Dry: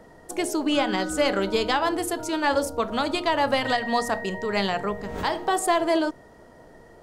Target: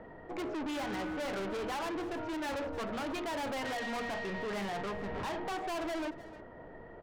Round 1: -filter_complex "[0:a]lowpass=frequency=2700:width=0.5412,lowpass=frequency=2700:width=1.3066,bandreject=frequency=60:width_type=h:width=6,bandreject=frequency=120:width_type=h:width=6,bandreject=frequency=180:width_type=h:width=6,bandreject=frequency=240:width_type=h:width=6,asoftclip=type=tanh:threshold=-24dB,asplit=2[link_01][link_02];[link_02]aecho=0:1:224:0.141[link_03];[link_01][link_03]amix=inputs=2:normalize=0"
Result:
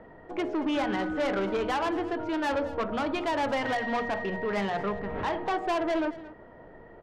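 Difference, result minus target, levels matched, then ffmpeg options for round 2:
echo 82 ms early; soft clipping: distortion −6 dB
-filter_complex "[0:a]lowpass=frequency=2700:width=0.5412,lowpass=frequency=2700:width=1.3066,bandreject=frequency=60:width_type=h:width=6,bandreject=frequency=120:width_type=h:width=6,bandreject=frequency=180:width_type=h:width=6,bandreject=frequency=240:width_type=h:width=6,asoftclip=type=tanh:threshold=-35dB,asplit=2[link_01][link_02];[link_02]aecho=0:1:306:0.141[link_03];[link_01][link_03]amix=inputs=2:normalize=0"

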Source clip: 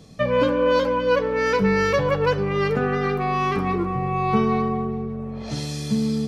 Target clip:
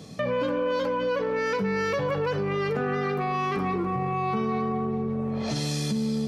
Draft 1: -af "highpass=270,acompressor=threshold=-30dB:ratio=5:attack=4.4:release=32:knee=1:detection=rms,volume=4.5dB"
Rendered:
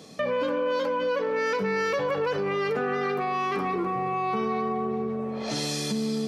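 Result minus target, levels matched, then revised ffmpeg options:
125 Hz band −7.0 dB
-af "highpass=110,acompressor=threshold=-30dB:ratio=5:attack=4.4:release=32:knee=1:detection=rms,volume=4.5dB"

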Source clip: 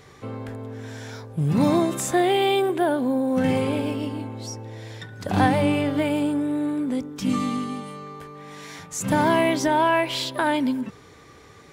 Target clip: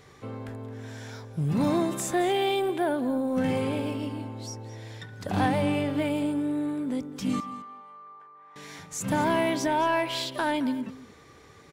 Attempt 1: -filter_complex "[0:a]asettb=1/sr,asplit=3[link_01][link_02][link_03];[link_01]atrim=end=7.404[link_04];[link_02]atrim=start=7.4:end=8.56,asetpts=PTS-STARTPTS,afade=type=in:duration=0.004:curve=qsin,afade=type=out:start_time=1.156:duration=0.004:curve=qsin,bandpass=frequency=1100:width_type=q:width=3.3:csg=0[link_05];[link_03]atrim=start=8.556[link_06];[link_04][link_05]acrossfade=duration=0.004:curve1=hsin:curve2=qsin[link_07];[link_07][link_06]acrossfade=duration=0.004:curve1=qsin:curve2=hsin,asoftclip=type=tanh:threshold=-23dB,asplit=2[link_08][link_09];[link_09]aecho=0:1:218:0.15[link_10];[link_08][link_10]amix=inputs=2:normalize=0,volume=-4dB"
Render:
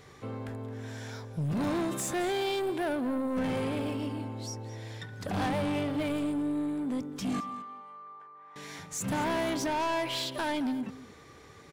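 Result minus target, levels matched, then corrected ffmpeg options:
soft clipping: distortion +13 dB
-filter_complex "[0:a]asettb=1/sr,asplit=3[link_01][link_02][link_03];[link_01]atrim=end=7.404[link_04];[link_02]atrim=start=7.4:end=8.56,asetpts=PTS-STARTPTS,afade=type=in:duration=0.004:curve=qsin,afade=type=out:start_time=1.156:duration=0.004:curve=qsin,bandpass=frequency=1100:width_type=q:width=3.3:csg=0[link_05];[link_03]atrim=start=8.556[link_06];[link_04][link_05]acrossfade=duration=0.004:curve1=hsin:curve2=qsin[link_07];[link_07][link_06]acrossfade=duration=0.004:curve1=qsin:curve2=hsin,asoftclip=type=tanh:threshold=-11.5dB,asplit=2[link_08][link_09];[link_09]aecho=0:1:218:0.15[link_10];[link_08][link_10]amix=inputs=2:normalize=0,volume=-4dB"

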